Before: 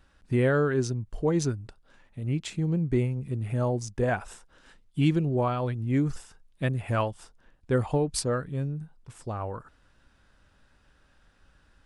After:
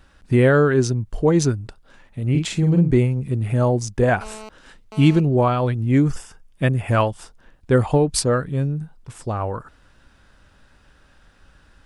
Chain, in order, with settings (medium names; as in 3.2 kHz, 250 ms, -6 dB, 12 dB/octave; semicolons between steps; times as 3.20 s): 2.30–2.91 s: doubling 46 ms -4 dB; 4.21–5.20 s: mobile phone buzz -46 dBFS; 6.09–6.91 s: band-stop 4 kHz, Q 5.7; trim +8.5 dB